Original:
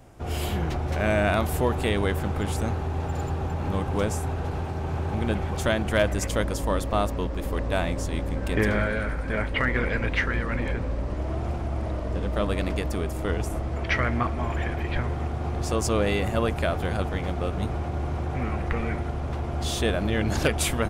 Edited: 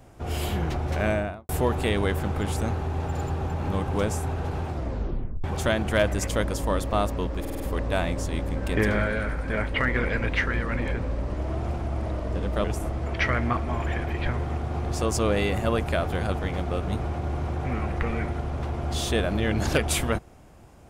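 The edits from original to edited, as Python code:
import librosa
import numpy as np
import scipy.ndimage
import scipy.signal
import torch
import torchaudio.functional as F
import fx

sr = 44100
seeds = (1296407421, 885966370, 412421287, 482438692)

y = fx.studio_fade_out(x, sr, start_s=1.0, length_s=0.49)
y = fx.edit(y, sr, fx.tape_stop(start_s=4.68, length_s=0.76),
    fx.stutter(start_s=7.4, slice_s=0.05, count=5),
    fx.cut(start_s=12.44, length_s=0.9), tone=tone)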